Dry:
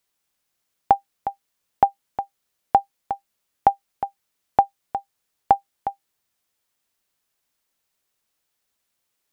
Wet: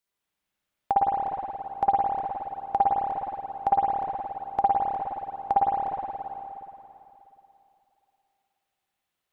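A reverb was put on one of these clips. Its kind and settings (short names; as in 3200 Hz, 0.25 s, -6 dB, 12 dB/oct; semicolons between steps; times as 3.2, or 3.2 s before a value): spring tank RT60 3 s, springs 53/58 ms, chirp 30 ms, DRR -7.5 dB; gain -10 dB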